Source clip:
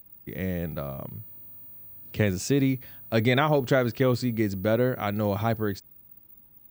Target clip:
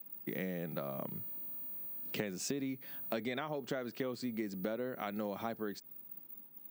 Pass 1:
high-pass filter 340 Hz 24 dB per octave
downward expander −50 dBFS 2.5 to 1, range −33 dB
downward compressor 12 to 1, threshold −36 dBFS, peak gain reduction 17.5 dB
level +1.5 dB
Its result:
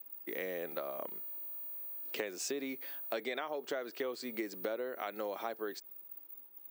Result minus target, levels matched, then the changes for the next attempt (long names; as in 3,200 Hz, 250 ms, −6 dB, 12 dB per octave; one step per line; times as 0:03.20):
125 Hz band −17.5 dB
change: high-pass filter 170 Hz 24 dB per octave